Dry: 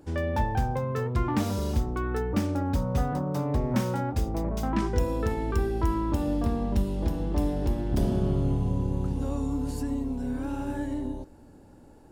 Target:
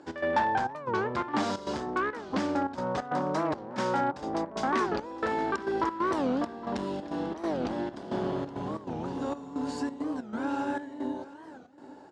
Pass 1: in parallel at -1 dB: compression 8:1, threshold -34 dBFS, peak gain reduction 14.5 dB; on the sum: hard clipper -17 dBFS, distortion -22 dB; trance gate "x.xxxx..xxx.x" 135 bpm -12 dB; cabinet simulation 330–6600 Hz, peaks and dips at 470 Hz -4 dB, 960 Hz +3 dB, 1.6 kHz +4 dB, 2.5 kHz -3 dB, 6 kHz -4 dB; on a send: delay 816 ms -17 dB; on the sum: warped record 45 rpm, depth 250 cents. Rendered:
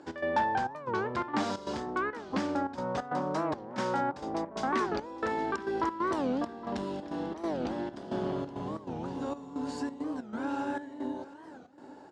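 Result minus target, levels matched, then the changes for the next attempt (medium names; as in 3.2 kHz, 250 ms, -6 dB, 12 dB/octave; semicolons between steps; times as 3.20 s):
compression: peak gain reduction +8.5 dB
change: compression 8:1, threshold -24 dBFS, peak gain reduction 6 dB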